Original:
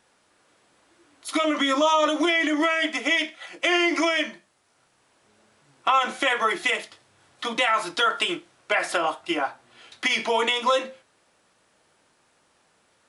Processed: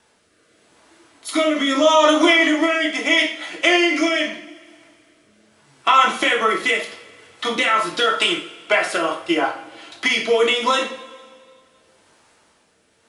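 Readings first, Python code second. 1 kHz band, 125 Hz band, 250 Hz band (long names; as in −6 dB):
+4.5 dB, can't be measured, +6.0 dB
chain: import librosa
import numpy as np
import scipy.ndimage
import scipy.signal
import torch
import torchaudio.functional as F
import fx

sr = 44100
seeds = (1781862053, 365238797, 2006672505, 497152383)

y = fx.rotary(x, sr, hz=0.8)
y = fx.rev_double_slope(y, sr, seeds[0], early_s=0.43, late_s=2.2, knee_db=-20, drr_db=1.5)
y = y * 10.0 ** (6.5 / 20.0)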